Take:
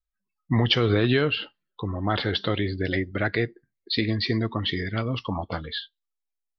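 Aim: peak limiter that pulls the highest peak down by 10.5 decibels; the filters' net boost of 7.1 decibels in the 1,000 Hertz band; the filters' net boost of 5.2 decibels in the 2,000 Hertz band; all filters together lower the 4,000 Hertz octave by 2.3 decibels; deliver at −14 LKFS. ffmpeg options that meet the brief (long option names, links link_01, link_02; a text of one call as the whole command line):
ffmpeg -i in.wav -af "equalizer=frequency=1000:width_type=o:gain=8.5,equalizer=frequency=2000:width_type=o:gain=5,equalizer=frequency=4000:width_type=o:gain=-6,volume=14dB,alimiter=limit=-2dB:level=0:latency=1" out.wav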